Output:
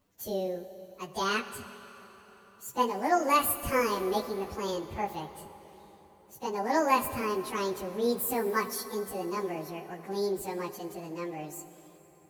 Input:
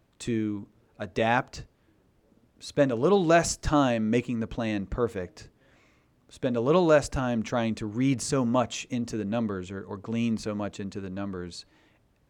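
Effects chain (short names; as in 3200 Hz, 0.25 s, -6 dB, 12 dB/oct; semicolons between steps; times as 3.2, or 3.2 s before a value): pitch shift by moving bins +9.5 st; high shelf 8500 Hz +11.5 dB; plate-style reverb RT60 4.3 s, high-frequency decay 0.75×, DRR 11 dB; gain -2.5 dB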